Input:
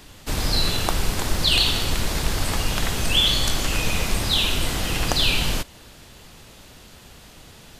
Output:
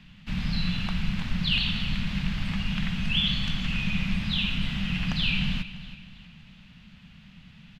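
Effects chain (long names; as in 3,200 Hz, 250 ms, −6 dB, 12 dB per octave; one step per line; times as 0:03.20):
drawn EQ curve 110 Hz 0 dB, 190 Hz +14 dB, 360 Hz −19 dB, 2,700 Hz +4 dB, 9,400 Hz −25 dB
repeating echo 323 ms, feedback 38%, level −14.5 dB
level −6.5 dB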